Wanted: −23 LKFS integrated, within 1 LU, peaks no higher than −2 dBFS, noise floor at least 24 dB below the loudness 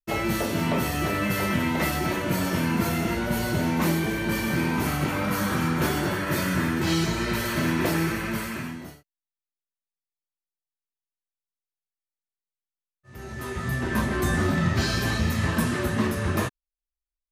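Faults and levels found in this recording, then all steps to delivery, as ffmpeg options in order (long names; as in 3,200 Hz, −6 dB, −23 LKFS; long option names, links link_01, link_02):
integrated loudness −25.5 LKFS; sample peak −12.0 dBFS; target loudness −23.0 LKFS
→ -af "volume=2.5dB"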